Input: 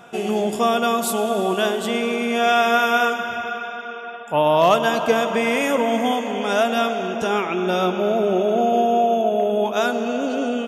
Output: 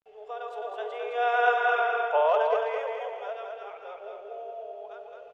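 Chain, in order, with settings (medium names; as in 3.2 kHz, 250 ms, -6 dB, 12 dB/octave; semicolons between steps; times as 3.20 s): Doppler pass-by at 3.59 s, 7 m/s, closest 1.5 m; Chebyshev high-pass 420 Hz, order 8; level rider gain up to 9.5 dB; tempo 2×; bit crusher 10-bit; tape spacing loss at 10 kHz 34 dB; feedback delay 212 ms, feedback 40%, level -4 dB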